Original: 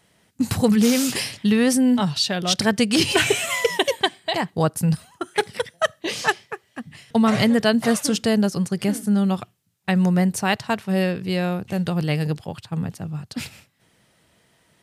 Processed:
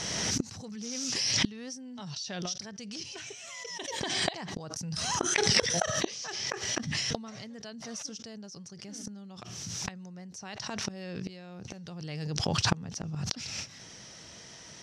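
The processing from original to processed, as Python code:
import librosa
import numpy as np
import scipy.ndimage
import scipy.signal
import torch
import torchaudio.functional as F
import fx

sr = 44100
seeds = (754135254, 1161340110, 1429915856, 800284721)

p1 = fx.rider(x, sr, range_db=3, speed_s=0.5)
p2 = x + (p1 * 10.0 ** (1.0 / 20.0))
p3 = fx.gate_flip(p2, sr, shuts_db=-14.0, range_db=-33)
p4 = fx.lowpass_res(p3, sr, hz=5800.0, q=8.1)
y = fx.pre_swell(p4, sr, db_per_s=22.0)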